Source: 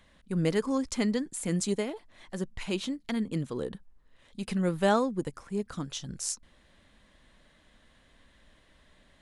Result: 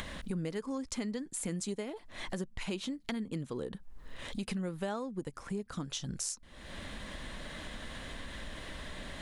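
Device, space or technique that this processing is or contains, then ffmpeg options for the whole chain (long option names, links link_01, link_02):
upward and downward compression: -af "acompressor=mode=upward:threshold=-38dB:ratio=2.5,acompressor=threshold=-42dB:ratio=6,volume=7dB"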